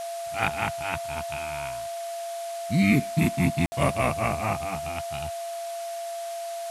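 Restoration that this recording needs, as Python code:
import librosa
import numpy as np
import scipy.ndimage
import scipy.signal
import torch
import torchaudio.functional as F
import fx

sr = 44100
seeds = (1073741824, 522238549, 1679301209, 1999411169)

y = fx.fix_declick_ar(x, sr, threshold=6.5)
y = fx.notch(y, sr, hz=680.0, q=30.0)
y = fx.fix_ambience(y, sr, seeds[0], print_start_s=5.49, print_end_s=5.99, start_s=3.66, end_s=3.72)
y = fx.noise_reduce(y, sr, print_start_s=5.49, print_end_s=5.99, reduce_db=30.0)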